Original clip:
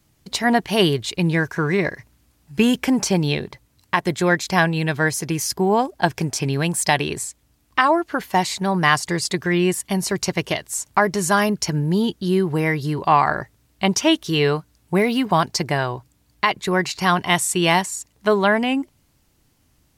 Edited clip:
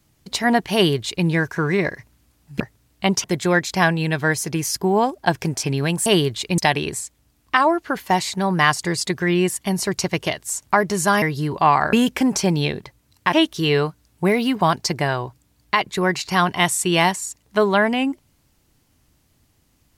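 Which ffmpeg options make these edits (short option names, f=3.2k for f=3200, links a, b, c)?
-filter_complex "[0:a]asplit=8[a][b][c][d][e][f][g][h];[a]atrim=end=2.602[i];[b]atrim=start=13.388:end=14.032[j];[c]atrim=start=3.998:end=6.822[k];[d]atrim=start=0.738:end=1.262[l];[e]atrim=start=6.818:end=11.462[m];[f]atrim=start=12.678:end=13.392[n];[g]atrim=start=2.598:end=4.002[o];[h]atrim=start=14.028[p];[i][j]acrossfade=d=0.004:c1=hsin:c2=hsin[q];[q][k]acrossfade=d=0.004:c1=hsin:c2=hsin[r];[r][l]acrossfade=d=0.004:c1=hsin:c2=hsin[s];[s][m]acrossfade=d=0.004:c1=hsin:c2=hsin[t];[t][n]acrossfade=d=0.004:c1=hsin:c2=hsin[u];[u][o]acrossfade=d=0.004:c1=hsin:c2=hsin[v];[v][p]acrossfade=d=0.004:c1=hsin:c2=hsin"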